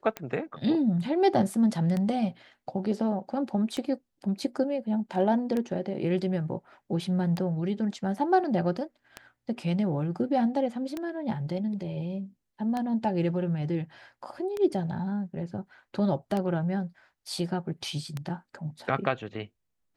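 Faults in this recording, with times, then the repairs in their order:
tick 33 1/3 rpm -18 dBFS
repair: de-click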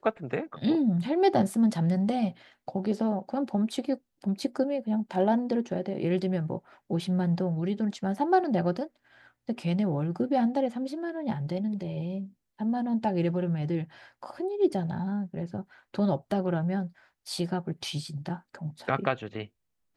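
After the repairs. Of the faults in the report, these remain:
none

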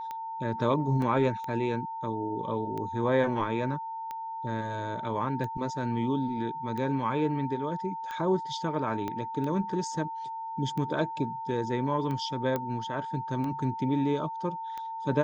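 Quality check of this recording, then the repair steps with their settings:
tick 45 rpm -24 dBFS
tone 900 Hz -34 dBFS
1.02 gap 2.3 ms
9.08 pop -20 dBFS
12.56 pop -17 dBFS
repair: de-click; notch 900 Hz, Q 30; interpolate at 1.02, 2.3 ms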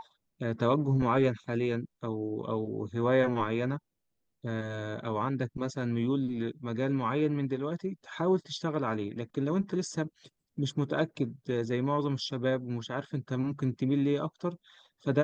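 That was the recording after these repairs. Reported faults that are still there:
9.08 pop

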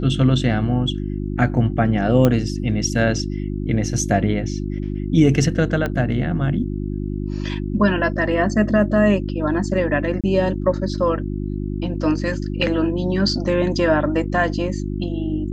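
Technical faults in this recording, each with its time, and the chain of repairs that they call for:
hum 50 Hz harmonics 7 -25 dBFS
2.25 pop -5 dBFS
5.86 pop -11 dBFS
10.21–10.24 gap 27 ms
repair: de-click; de-hum 50 Hz, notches 7; interpolate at 10.21, 27 ms

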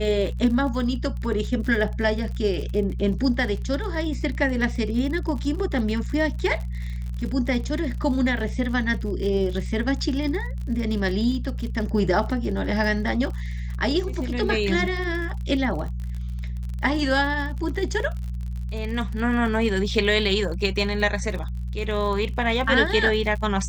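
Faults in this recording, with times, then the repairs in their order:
crackle 49/s -31 dBFS
hum 60 Hz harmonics 3 -29 dBFS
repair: de-click; de-hum 60 Hz, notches 3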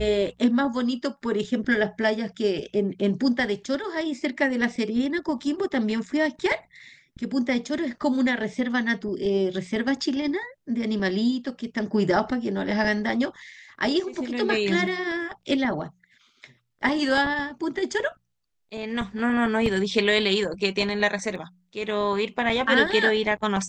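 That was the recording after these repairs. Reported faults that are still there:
none

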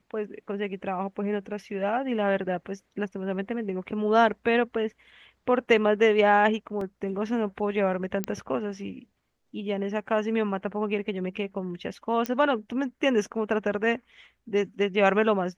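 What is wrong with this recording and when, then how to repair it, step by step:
6.81 gap 3 ms
8.24 pop -13 dBFS
12.26 pop -13 dBFS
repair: de-click; interpolate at 6.81, 3 ms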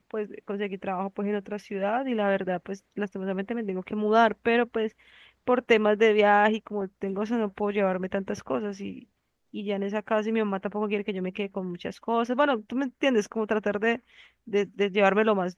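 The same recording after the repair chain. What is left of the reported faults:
none

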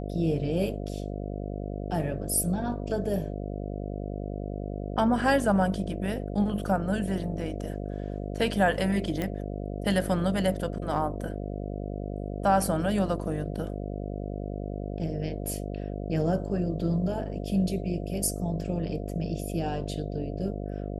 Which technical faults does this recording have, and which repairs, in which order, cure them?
buzz 50 Hz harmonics 14 -34 dBFS
9.22 pop -16 dBFS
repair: de-click; de-hum 50 Hz, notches 14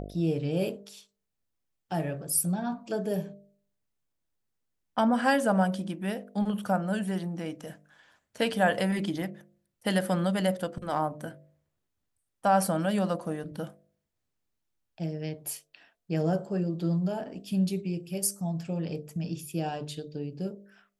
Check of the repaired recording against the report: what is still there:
9.22 pop

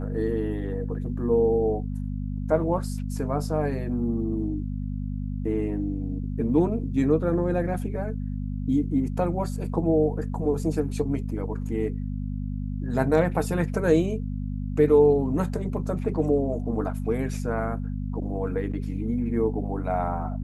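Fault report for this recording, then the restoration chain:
hum 50 Hz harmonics 5 -30 dBFS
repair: de-hum 50 Hz, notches 5

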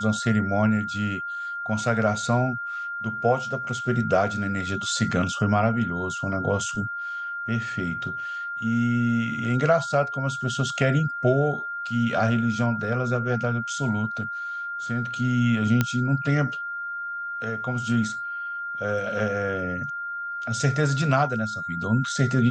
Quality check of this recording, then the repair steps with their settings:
tone 1400 Hz -29 dBFS
15.81 pop -7 dBFS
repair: de-click; notch 1400 Hz, Q 30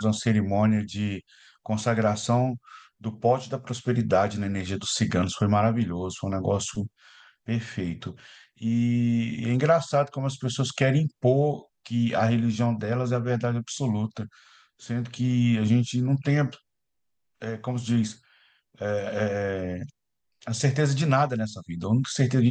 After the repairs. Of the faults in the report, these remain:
none

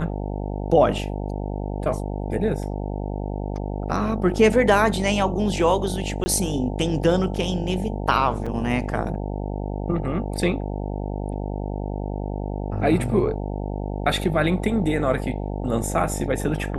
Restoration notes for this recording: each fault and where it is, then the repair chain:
buzz 50 Hz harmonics 18 -28 dBFS
6.24–6.26 gap 20 ms
8.46–8.47 gap 5.3 ms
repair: de-hum 50 Hz, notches 18; interpolate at 6.24, 20 ms; interpolate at 8.46, 5.3 ms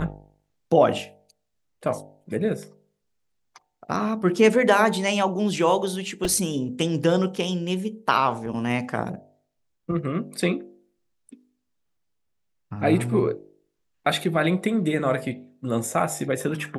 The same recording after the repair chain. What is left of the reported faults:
none

